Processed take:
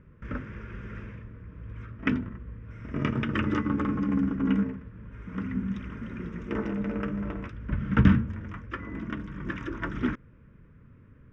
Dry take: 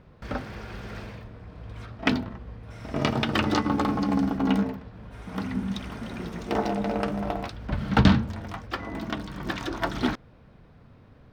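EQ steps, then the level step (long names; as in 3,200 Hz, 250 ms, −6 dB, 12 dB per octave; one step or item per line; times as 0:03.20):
low-pass filter 6,500 Hz 24 dB per octave
high-shelf EQ 2,700 Hz −9 dB
phaser with its sweep stopped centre 1,800 Hz, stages 4
0.0 dB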